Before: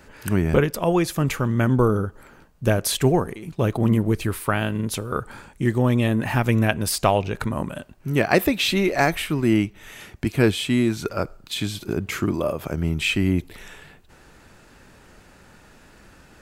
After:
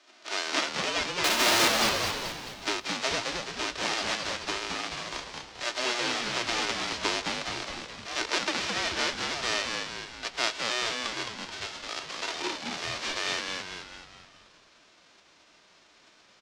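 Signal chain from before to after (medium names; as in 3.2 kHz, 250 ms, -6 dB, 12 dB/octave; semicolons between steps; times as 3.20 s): formants flattened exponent 0.1; low-pass 5.7 kHz 24 dB/octave; comb 3.4 ms, depth 37%; frequency shift -240 Hz; 1.24–1.68 s: power-law waveshaper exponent 0.35; Chebyshev high-pass 280 Hz, order 4; on a send: frequency-shifting echo 215 ms, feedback 51%, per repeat -120 Hz, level -4 dB; on the sum: trim -7 dB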